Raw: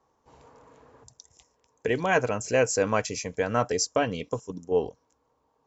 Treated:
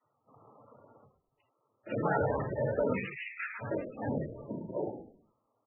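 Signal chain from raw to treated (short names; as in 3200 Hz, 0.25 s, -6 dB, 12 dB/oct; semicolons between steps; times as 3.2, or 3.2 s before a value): 2.92–3.59 steep high-pass 1800 Hz 36 dB/oct; non-linear reverb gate 0.13 s falling, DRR 5 dB; sample leveller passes 2; auto swell 0.287 s; limiter -19 dBFS, peak gain reduction 9.5 dB; noise vocoder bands 12; frequency-shifting echo 0.104 s, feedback 35%, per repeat -52 Hz, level -11.5 dB; harmonic-percussive split percussive -8 dB; MP3 8 kbps 24000 Hz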